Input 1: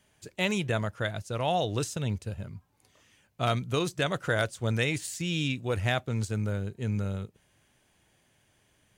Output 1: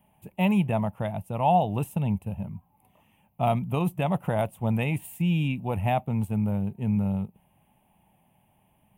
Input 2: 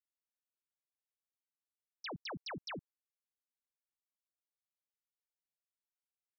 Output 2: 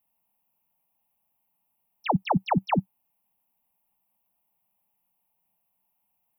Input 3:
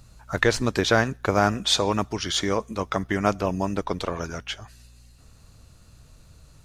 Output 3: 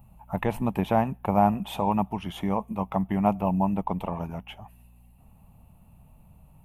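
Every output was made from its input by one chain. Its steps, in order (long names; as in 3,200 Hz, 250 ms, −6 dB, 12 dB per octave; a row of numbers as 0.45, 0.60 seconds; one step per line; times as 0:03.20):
drawn EQ curve 120 Hz 0 dB, 190 Hz +9 dB, 320 Hz −4 dB, 480 Hz −5 dB, 860 Hz +10 dB, 1,500 Hz −15 dB, 2,700 Hz −2 dB, 4,500 Hz −27 dB, 6,800 Hz −22 dB, 12,000 Hz +5 dB
loudness normalisation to −27 LKFS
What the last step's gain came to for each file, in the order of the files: +2.0, +17.5, −3.5 decibels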